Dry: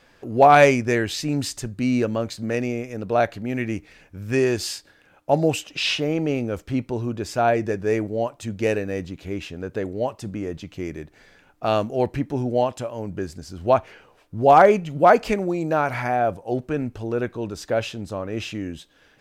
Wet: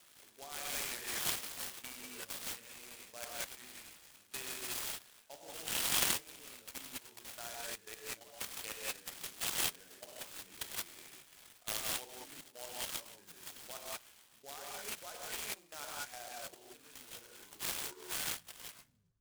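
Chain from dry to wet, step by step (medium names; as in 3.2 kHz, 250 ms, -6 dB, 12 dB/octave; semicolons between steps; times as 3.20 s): tape stop on the ending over 2.03 s; level held to a coarse grid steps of 21 dB; gated-style reverb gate 210 ms rising, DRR -4.5 dB; reverse; compression 12:1, threshold -25 dBFS, peak gain reduction 14 dB; reverse; band-pass filter 3.3 kHz, Q 17; delay time shaken by noise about 5.5 kHz, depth 0.087 ms; trim +17 dB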